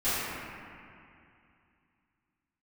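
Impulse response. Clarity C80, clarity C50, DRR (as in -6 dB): -2.5 dB, -5.0 dB, -18.5 dB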